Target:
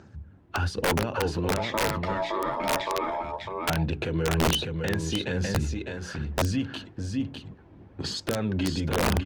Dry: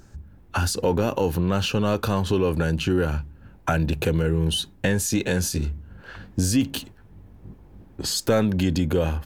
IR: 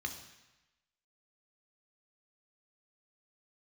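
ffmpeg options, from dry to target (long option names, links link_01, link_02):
-filter_complex "[0:a]highpass=frequency=77:width=0.5412,highpass=frequency=77:width=1.3066,alimiter=limit=-17.5dB:level=0:latency=1:release=209,asettb=1/sr,asplit=3[link_01][link_02][link_03];[link_01]atrim=end=1.574[link_04];[link_02]atrim=start=1.57:end=3.24,asetpts=PTS-STARTPTS,afade=type=in:duration=0.004:curve=qsin,afade=type=out:start_time=1.666:duration=0.004:curve=qsin,aeval=exprs='val(0)*sin(2*PI*760*n/s)':channel_layout=same[link_05];[link_03]atrim=start=3.236[link_06];[link_04][link_05]acrossfade=duration=0.004:curve1=hsin:curve2=qsin[link_07];[link_07][link_06]acrossfade=duration=0.004:curve1=qsin:curve2=hsin,lowpass=3800,aecho=1:1:603:0.562,aphaser=in_gain=1:out_gain=1:delay=3.1:decay=0.32:speed=1.1:type=sinusoidal,bandreject=frequency=60:width_type=h:width=6,bandreject=frequency=120:width_type=h:width=6,bandreject=frequency=180:width_type=h:width=6,bandreject=frequency=240:width_type=h:width=6,bandreject=frequency=300:width_type=h:width=6,bandreject=frequency=360:width_type=h:width=6,bandreject=frequency=420:width_type=h:width=6,aeval=exprs='(mod(7.08*val(0)+1,2)-1)/7.08':channel_layout=same" -ar 48000 -c:a libopus -b:a 48k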